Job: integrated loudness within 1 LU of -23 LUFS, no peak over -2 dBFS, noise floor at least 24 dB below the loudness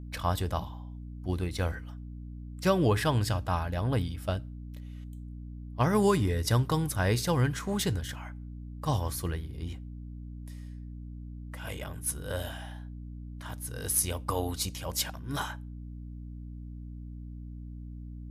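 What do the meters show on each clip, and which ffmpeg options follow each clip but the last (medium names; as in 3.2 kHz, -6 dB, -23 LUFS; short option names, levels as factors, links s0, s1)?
hum 60 Hz; highest harmonic 300 Hz; hum level -39 dBFS; loudness -30.5 LUFS; peak level -13.5 dBFS; loudness target -23.0 LUFS
-> -af "bandreject=f=60:t=h:w=4,bandreject=f=120:t=h:w=4,bandreject=f=180:t=h:w=4,bandreject=f=240:t=h:w=4,bandreject=f=300:t=h:w=4"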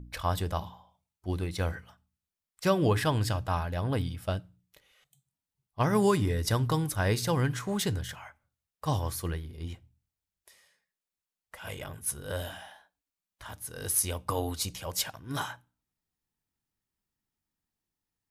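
hum not found; loudness -30.5 LUFS; peak level -12.5 dBFS; loudness target -23.0 LUFS
-> -af "volume=2.37"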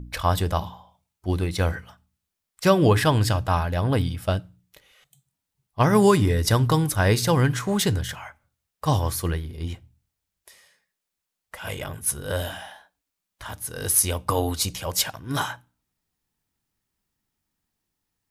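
loudness -23.0 LUFS; peak level -5.0 dBFS; noise floor -83 dBFS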